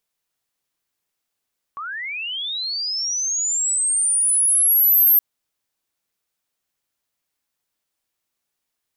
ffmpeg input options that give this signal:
ffmpeg -f lavfi -i "aevalsrc='pow(10,(-27.5+17*t/3.42)/20)*sin(2*PI*(1100*t+11900*t*t/(2*3.42)))':duration=3.42:sample_rate=44100" out.wav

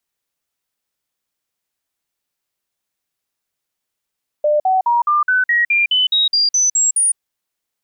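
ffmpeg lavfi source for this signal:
ffmpeg -f lavfi -i "aevalsrc='0.266*clip(min(mod(t,0.21),0.16-mod(t,0.21))/0.005,0,1)*sin(2*PI*598*pow(2,floor(t/0.21)/3)*mod(t,0.21))':duration=2.73:sample_rate=44100" out.wav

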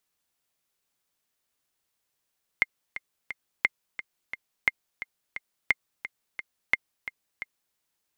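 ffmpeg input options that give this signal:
ffmpeg -f lavfi -i "aevalsrc='pow(10,(-7-13.5*gte(mod(t,3*60/175),60/175))/20)*sin(2*PI*2100*mod(t,60/175))*exp(-6.91*mod(t,60/175)/0.03)':duration=5.14:sample_rate=44100" out.wav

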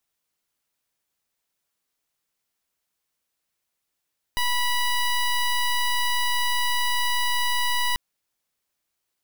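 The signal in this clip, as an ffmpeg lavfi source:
ffmpeg -f lavfi -i "aevalsrc='0.075*(2*lt(mod(979*t,1),0.14)-1)':duration=3.59:sample_rate=44100" out.wav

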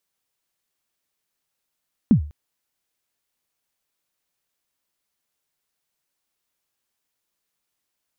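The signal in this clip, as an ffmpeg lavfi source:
ffmpeg -f lavfi -i "aevalsrc='0.447*pow(10,-3*t/0.38)*sin(2*PI*(260*0.099/log(74/260)*(exp(log(74/260)*min(t,0.099)/0.099)-1)+74*max(t-0.099,0)))':duration=0.2:sample_rate=44100" out.wav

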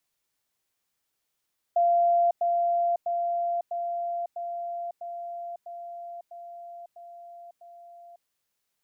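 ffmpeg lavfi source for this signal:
ffmpeg -f lavfi -i "aevalsrc='pow(10,(-18.5-3*floor(t/0.65))/20)*sin(2*PI*691*t)*clip(min(mod(t,0.65),0.55-mod(t,0.65))/0.005,0,1)':duration=6.5:sample_rate=44100" out.wav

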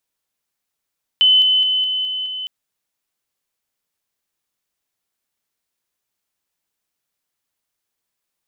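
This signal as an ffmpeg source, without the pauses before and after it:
ffmpeg -f lavfi -i "aevalsrc='pow(10,(-9-3*floor(t/0.21))/20)*sin(2*PI*3030*t)':duration=1.26:sample_rate=44100" out.wav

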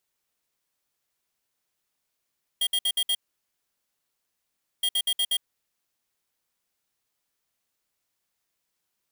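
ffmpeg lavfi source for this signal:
ffmpeg -f lavfi -i "aevalsrc='0.0631*(2*lt(mod(3240*t,1),0.5)-1)*clip(min(mod(mod(t,2.22),0.12),0.06-mod(mod(t,2.22),0.12))/0.005,0,1)*lt(mod(t,2.22),0.6)':duration=4.44:sample_rate=44100" out.wav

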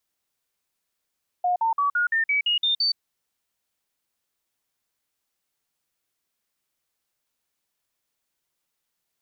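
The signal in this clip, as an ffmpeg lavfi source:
ffmpeg -f lavfi -i "aevalsrc='0.112*clip(min(mod(t,0.17),0.12-mod(t,0.17))/0.005,0,1)*sin(2*PI*718*pow(2,floor(t/0.17)/3)*mod(t,0.17))':duration=1.53:sample_rate=44100" out.wav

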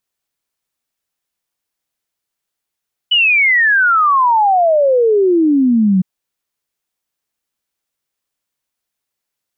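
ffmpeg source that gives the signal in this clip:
ffmpeg -f lavfi -i "aevalsrc='0.376*clip(min(t,2.91-t)/0.01,0,1)*sin(2*PI*3000*2.91/log(180/3000)*(exp(log(180/3000)*t/2.91)-1))':duration=2.91:sample_rate=44100" out.wav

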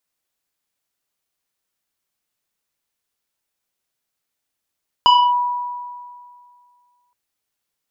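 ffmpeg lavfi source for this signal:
ffmpeg -f lavfi -i "aevalsrc='0.447*pow(10,-3*t/2.15)*sin(2*PI*977*t+1*clip(1-t/0.27,0,1)*sin(2*PI*2.03*977*t))':duration=2.07:sample_rate=44100" out.wav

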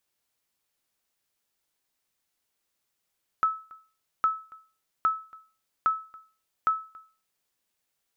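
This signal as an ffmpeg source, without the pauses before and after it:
ffmpeg -f lavfi -i "aevalsrc='0.158*(sin(2*PI*1300*mod(t,0.81))*exp(-6.91*mod(t,0.81)/0.37)+0.0596*sin(2*PI*1300*max(mod(t,0.81)-0.28,0))*exp(-6.91*max(mod(t,0.81)-0.28,0)/0.37))':duration=4.05:sample_rate=44100" out.wav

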